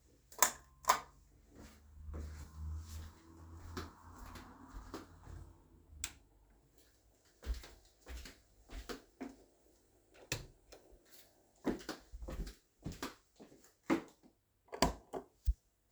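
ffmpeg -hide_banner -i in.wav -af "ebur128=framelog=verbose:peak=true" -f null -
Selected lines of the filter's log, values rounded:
Integrated loudness:
  I:         -42.0 LUFS
  Threshold: -54.2 LUFS
Loudness range:
  LRA:        10.2 LU
  Threshold: -67.3 LUFS
  LRA low:   -52.7 LUFS
  LRA high:  -42.6 LUFS
True peak:
  Peak:       -7.4 dBFS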